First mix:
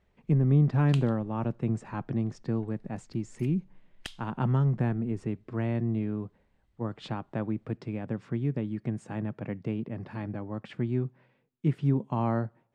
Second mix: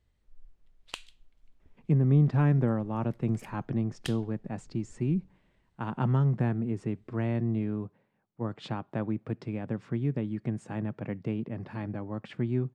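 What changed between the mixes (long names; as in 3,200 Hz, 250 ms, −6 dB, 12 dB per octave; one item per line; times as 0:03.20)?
speech: entry +1.60 s
background: add high-shelf EQ 5,700 Hz +5.5 dB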